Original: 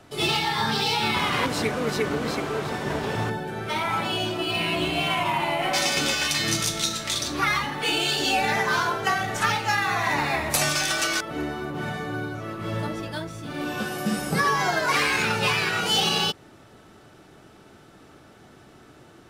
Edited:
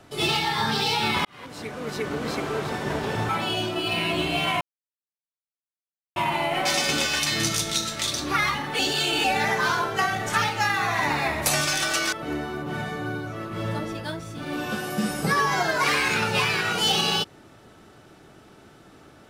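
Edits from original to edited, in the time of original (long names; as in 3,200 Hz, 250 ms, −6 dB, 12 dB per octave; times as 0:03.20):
0:01.25–0:02.48: fade in
0:03.29–0:03.92: remove
0:05.24: splice in silence 1.55 s
0:07.87–0:08.32: reverse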